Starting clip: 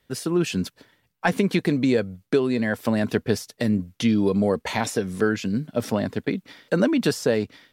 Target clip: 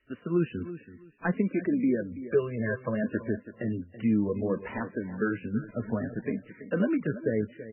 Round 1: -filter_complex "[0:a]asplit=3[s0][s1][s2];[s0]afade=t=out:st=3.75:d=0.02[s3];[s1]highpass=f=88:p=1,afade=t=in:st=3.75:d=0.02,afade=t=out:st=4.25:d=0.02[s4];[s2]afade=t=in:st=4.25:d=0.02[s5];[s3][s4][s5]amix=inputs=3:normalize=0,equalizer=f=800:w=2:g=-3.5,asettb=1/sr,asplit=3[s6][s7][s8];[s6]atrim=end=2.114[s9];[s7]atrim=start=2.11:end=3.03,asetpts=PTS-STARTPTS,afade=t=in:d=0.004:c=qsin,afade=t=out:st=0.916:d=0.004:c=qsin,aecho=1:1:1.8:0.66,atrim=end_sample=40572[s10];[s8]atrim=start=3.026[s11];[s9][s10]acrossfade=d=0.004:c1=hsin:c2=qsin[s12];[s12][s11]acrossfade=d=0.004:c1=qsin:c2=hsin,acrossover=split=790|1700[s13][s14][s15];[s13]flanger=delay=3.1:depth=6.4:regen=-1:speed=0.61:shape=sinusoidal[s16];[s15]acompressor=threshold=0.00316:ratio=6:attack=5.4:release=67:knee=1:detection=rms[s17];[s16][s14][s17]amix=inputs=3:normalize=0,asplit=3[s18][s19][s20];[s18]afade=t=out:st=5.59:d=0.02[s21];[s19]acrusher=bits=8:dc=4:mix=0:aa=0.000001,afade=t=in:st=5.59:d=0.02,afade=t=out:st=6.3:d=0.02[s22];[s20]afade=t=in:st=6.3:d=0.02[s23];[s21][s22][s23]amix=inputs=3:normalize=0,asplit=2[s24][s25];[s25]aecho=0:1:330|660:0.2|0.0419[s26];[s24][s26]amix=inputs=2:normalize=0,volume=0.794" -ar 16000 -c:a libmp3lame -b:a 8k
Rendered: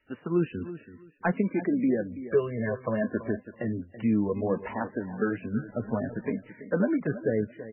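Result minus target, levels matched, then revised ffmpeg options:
1 kHz band +3.5 dB
-filter_complex "[0:a]asplit=3[s0][s1][s2];[s0]afade=t=out:st=3.75:d=0.02[s3];[s1]highpass=f=88:p=1,afade=t=in:st=3.75:d=0.02,afade=t=out:st=4.25:d=0.02[s4];[s2]afade=t=in:st=4.25:d=0.02[s5];[s3][s4][s5]amix=inputs=3:normalize=0,equalizer=f=800:w=2:g=-11,asettb=1/sr,asplit=3[s6][s7][s8];[s6]atrim=end=2.114[s9];[s7]atrim=start=2.11:end=3.03,asetpts=PTS-STARTPTS,afade=t=in:d=0.004:c=qsin,afade=t=out:st=0.916:d=0.004:c=qsin,aecho=1:1:1.8:0.66,atrim=end_sample=40572[s10];[s8]atrim=start=3.026[s11];[s9][s10]acrossfade=d=0.004:c1=hsin:c2=qsin[s12];[s12][s11]acrossfade=d=0.004:c1=qsin:c2=hsin,acrossover=split=790|1700[s13][s14][s15];[s13]flanger=delay=3.1:depth=6.4:regen=-1:speed=0.61:shape=sinusoidal[s16];[s15]acompressor=threshold=0.00316:ratio=6:attack=5.4:release=67:knee=1:detection=rms[s17];[s16][s14][s17]amix=inputs=3:normalize=0,asplit=3[s18][s19][s20];[s18]afade=t=out:st=5.59:d=0.02[s21];[s19]acrusher=bits=8:dc=4:mix=0:aa=0.000001,afade=t=in:st=5.59:d=0.02,afade=t=out:st=6.3:d=0.02[s22];[s20]afade=t=in:st=6.3:d=0.02[s23];[s21][s22][s23]amix=inputs=3:normalize=0,asplit=2[s24][s25];[s25]aecho=0:1:330|660:0.2|0.0419[s26];[s24][s26]amix=inputs=2:normalize=0,volume=0.794" -ar 16000 -c:a libmp3lame -b:a 8k

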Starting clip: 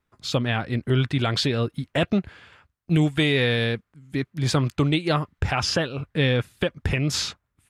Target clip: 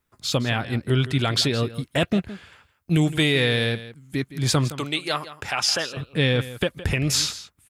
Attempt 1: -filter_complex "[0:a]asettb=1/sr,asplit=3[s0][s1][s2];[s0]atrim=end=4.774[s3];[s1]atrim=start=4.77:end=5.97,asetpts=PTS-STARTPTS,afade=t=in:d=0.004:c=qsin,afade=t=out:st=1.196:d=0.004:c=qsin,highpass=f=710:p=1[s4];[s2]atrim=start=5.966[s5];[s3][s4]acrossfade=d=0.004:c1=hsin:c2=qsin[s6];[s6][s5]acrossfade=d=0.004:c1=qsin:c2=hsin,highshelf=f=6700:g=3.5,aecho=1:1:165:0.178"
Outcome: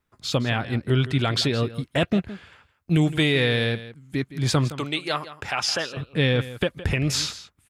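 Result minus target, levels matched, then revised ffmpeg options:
8 kHz band -4.0 dB
-filter_complex "[0:a]asettb=1/sr,asplit=3[s0][s1][s2];[s0]atrim=end=4.774[s3];[s1]atrim=start=4.77:end=5.97,asetpts=PTS-STARTPTS,afade=t=in:d=0.004:c=qsin,afade=t=out:st=1.196:d=0.004:c=qsin,highpass=f=710:p=1[s4];[s2]atrim=start=5.966[s5];[s3][s4]acrossfade=d=0.004:c1=hsin:c2=qsin[s6];[s6][s5]acrossfade=d=0.004:c1=qsin:c2=hsin,highshelf=f=6700:g=12.5,aecho=1:1:165:0.178"

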